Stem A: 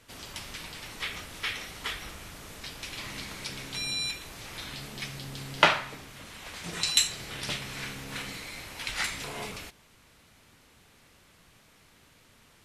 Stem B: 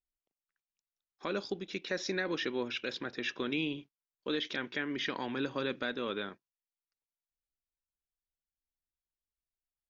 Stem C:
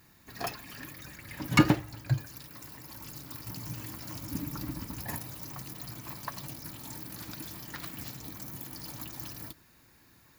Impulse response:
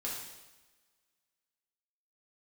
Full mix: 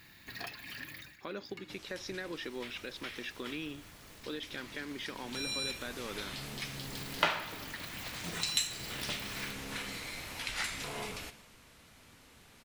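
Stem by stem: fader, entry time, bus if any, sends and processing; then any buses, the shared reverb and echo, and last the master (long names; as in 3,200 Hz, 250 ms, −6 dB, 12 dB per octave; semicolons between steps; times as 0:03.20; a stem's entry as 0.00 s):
0:05.14 −11 dB → 0:05.48 −1 dB, 1.60 s, send −12.5 dB, floating-point word with a short mantissa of 4 bits
−4.0 dB, 0.00 s, no send, no processing
−0.5 dB, 0.00 s, send −23.5 dB, flat-topped bell 2,700 Hz +9.5 dB; downward compressor 2 to 1, threshold −44 dBFS, peak gain reduction 17.5 dB; automatic ducking −18 dB, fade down 0.25 s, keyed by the second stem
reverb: on, RT60 1.2 s, pre-delay 3 ms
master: downward compressor 1.5 to 1, threshold −41 dBFS, peak gain reduction 10 dB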